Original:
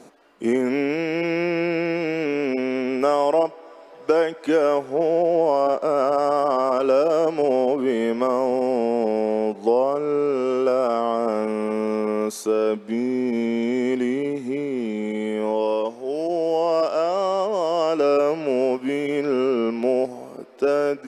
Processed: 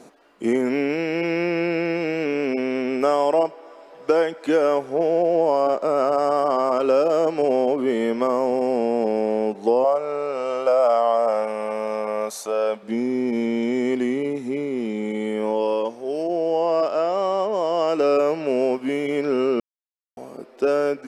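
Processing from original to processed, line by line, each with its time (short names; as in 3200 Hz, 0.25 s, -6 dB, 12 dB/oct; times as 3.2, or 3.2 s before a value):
9.84–12.83 resonant low shelf 460 Hz -8 dB, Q 3
16.22–17.87 high shelf 5000 Hz -> 7800 Hz -9.5 dB
19.6–20.17 mute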